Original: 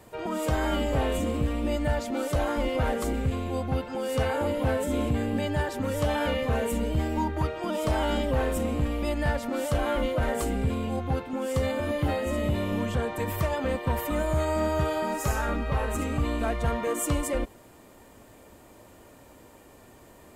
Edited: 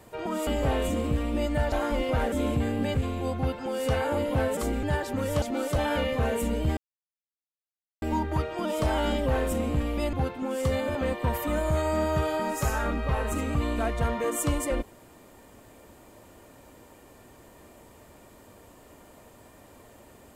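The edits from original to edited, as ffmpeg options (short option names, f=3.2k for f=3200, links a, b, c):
-filter_complex "[0:a]asplit=12[a][b][c][d][e][f][g][h][i][j][k][l];[a]atrim=end=0.472[m];[b]atrim=start=0.768:end=2.022[n];[c]atrim=start=2.378:end=2.982[o];[d]atrim=start=4.858:end=5.492[p];[e]atrim=start=3.238:end=4.862[q];[f]atrim=start=2.978:end=3.242[r];[g]atrim=start=5.488:end=6.082[s];[h]atrim=start=2.018:end=2.382[t];[i]atrim=start=6.078:end=7.07,asetpts=PTS-STARTPTS,afade=t=out:st=0.988:d=0.004:c=hsin,apad=pad_dur=1.25[u];[j]atrim=start=7.07:end=9.182,asetpts=PTS-STARTPTS,afade=t=in:d=0.004:c=hsin[v];[k]atrim=start=11.038:end=11.862[w];[l]atrim=start=13.578[x];[m][n]acrossfade=d=0.004:c1=hsin:c2=hsin[y];[y][o]acrossfade=d=0.004:c1=hsin:c2=hsin[z];[z][p]acrossfade=d=0.004:c1=hsin:c2=hsin[aa];[aa][q]acrossfade=d=0.004:c1=hsin:c2=hsin[ab];[ab][r]acrossfade=d=0.004:c1=hsin:c2=hsin[ac];[ac][s]acrossfade=d=0.004:c1=hsin:c2=hsin[ad];[ad][t]acrossfade=d=0.004:c1=hsin:c2=hsin[ae];[u][v]concat=n=2:v=0:a=1[af];[ae][af]acrossfade=d=0.004:c1=hsin:c2=hsin[ag];[ag][w]acrossfade=d=0.004:c1=hsin:c2=hsin[ah];[ah][x]acrossfade=d=0.004:c1=hsin:c2=hsin"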